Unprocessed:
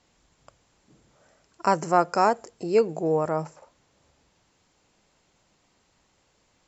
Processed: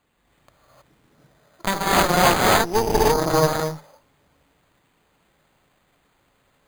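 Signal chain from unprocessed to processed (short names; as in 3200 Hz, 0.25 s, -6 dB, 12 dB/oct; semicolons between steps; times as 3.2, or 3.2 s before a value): non-linear reverb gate 0.34 s rising, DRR -5.5 dB; added harmonics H 8 -11 dB, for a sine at -1 dBFS; careless resampling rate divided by 8×, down none, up hold; gain -3.5 dB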